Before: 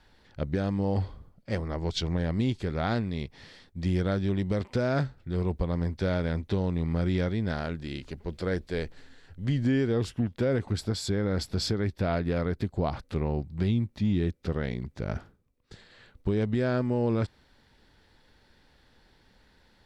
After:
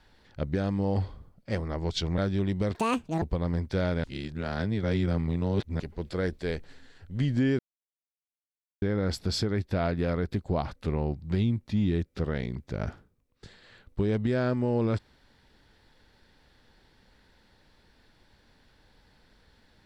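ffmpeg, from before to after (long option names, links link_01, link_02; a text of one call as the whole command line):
ffmpeg -i in.wav -filter_complex "[0:a]asplit=8[link_01][link_02][link_03][link_04][link_05][link_06][link_07][link_08];[link_01]atrim=end=2.182[link_09];[link_02]atrim=start=4.078:end=4.654[link_10];[link_03]atrim=start=4.65:end=5.5,asetpts=PTS-STARTPTS,asetrate=79821,aresample=44100[link_11];[link_04]atrim=start=5.496:end=6.322[link_12];[link_05]atrim=start=6.318:end=8.082,asetpts=PTS-STARTPTS,areverse[link_13];[link_06]atrim=start=8.078:end=9.87,asetpts=PTS-STARTPTS,afade=type=out:start_time=1.788:duration=0.004:curve=hsin[link_14];[link_07]atrim=start=9.87:end=11.1,asetpts=PTS-STARTPTS,volume=0[link_15];[link_08]atrim=start=11.1,asetpts=PTS-STARTPTS,afade=type=in:duration=0.004:curve=hsin[link_16];[link_09][link_10]acrossfade=duration=0.004:curve1=hsin:curve2=hsin[link_17];[link_17][link_11]acrossfade=duration=0.004:curve1=hsin:curve2=hsin[link_18];[link_18][link_12]acrossfade=duration=0.004:curve1=hsin:curve2=hsin[link_19];[link_19][link_13]acrossfade=duration=0.004:curve1=hsin:curve2=hsin[link_20];[link_14][link_15][link_16]concat=n=3:v=0:a=1[link_21];[link_20][link_21]acrossfade=duration=0.004:curve1=hsin:curve2=hsin" out.wav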